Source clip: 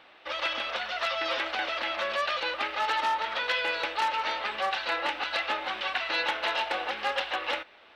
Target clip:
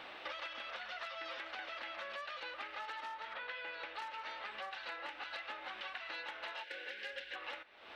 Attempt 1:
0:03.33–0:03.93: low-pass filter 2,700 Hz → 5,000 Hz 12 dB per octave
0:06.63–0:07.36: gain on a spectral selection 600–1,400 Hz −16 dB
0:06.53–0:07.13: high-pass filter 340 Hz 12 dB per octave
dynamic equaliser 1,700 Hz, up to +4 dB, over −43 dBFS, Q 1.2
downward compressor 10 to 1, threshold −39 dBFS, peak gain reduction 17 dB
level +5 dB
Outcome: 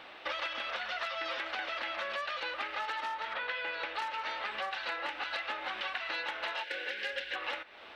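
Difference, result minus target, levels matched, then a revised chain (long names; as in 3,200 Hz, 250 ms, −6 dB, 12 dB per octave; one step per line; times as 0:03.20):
downward compressor: peak gain reduction −8 dB
0:03.33–0:03.93: low-pass filter 2,700 Hz → 5,000 Hz 12 dB per octave
0:06.63–0:07.36: gain on a spectral selection 600–1,400 Hz −16 dB
0:06.53–0:07.13: high-pass filter 340 Hz 12 dB per octave
dynamic equaliser 1,700 Hz, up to +4 dB, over −43 dBFS, Q 1.2
downward compressor 10 to 1, threshold −48 dBFS, peak gain reduction 25 dB
level +5 dB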